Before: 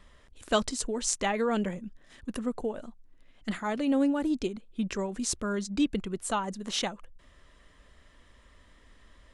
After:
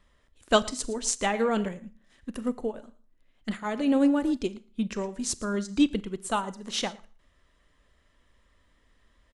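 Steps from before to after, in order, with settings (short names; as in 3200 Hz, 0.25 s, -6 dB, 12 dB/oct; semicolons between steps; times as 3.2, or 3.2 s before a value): echo 0.113 s -17.5 dB; Schroeder reverb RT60 0.47 s, combs from 28 ms, DRR 14 dB; upward expander 1.5:1, over -46 dBFS; gain +5 dB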